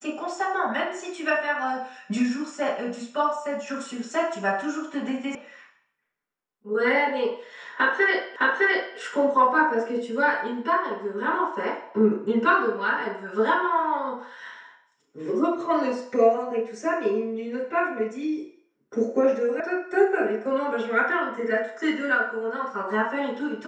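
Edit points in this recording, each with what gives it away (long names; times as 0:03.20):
0:05.35: cut off before it has died away
0:08.36: the same again, the last 0.61 s
0:19.60: cut off before it has died away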